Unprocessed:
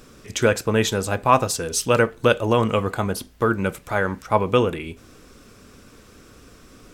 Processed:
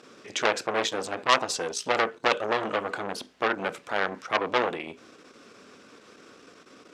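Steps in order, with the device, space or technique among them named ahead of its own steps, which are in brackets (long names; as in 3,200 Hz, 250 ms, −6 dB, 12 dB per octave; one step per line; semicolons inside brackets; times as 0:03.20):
public-address speaker with an overloaded transformer (saturating transformer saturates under 4,000 Hz; band-pass filter 290–5,500 Hz)
level +1 dB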